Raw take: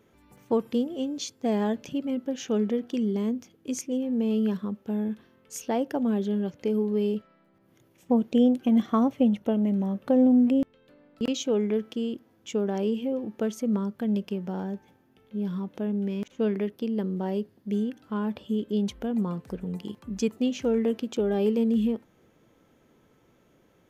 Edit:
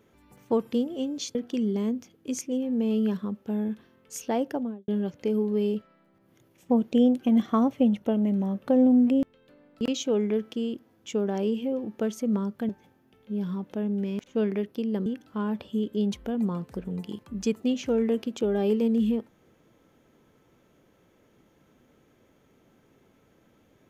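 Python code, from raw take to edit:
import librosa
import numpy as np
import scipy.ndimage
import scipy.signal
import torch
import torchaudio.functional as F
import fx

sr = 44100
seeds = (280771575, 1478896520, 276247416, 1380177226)

y = fx.studio_fade_out(x, sr, start_s=5.85, length_s=0.43)
y = fx.edit(y, sr, fx.cut(start_s=1.35, length_s=1.4),
    fx.cut(start_s=14.09, length_s=0.64),
    fx.cut(start_s=17.1, length_s=0.72), tone=tone)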